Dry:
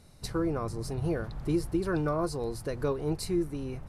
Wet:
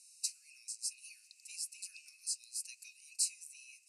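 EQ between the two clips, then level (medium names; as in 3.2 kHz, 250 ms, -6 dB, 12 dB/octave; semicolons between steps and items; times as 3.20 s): rippled Chebyshev high-pass 2.5 kHz, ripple 9 dB; Butterworth band-stop 3.4 kHz, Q 1.3; low-pass 7.1 kHz 12 dB/octave; +16.5 dB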